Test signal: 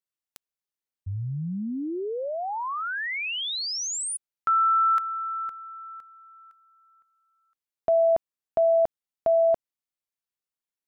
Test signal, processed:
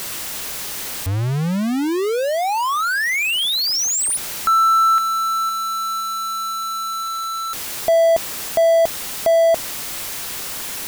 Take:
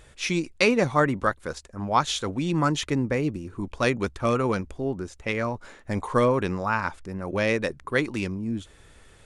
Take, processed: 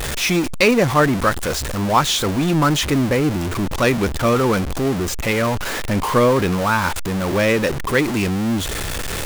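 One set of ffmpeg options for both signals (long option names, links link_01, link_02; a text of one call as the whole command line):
ffmpeg -i in.wav -af "aeval=exprs='val(0)+0.5*0.0708*sgn(val(0))':channel_layout=same,volume=4dB" out.wav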